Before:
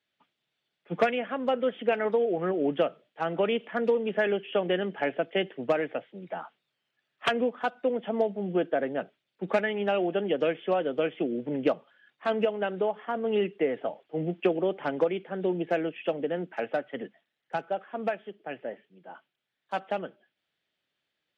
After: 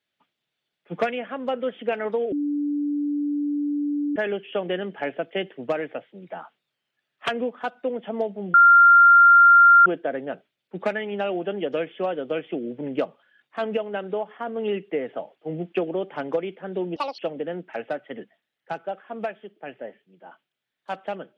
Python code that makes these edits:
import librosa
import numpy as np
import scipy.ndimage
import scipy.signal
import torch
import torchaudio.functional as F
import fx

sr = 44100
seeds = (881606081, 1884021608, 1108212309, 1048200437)

y = fx.edit(x, sr, fx.bleep(start_s=2.32, length_s=1.84, hz=291.0, db=-22.0),
    fx.insert_tone(at_s=8.54, length_s=1.32, hz=1390.0, db=-9.0),
    fx.speed_span(start_s=15.64, length_s=0.38, speed=1.69), tone=tone)